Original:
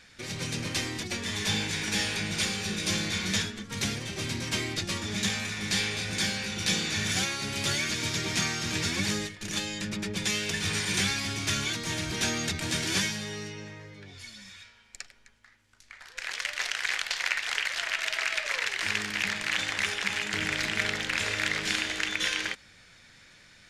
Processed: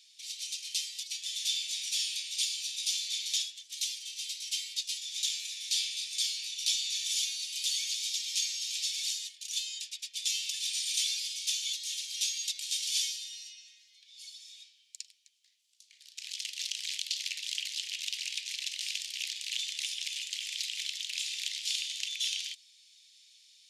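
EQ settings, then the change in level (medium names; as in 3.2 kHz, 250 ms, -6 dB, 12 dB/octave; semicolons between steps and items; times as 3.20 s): steep high-pass 3 kHz 36 dB/octave; 0.0 dB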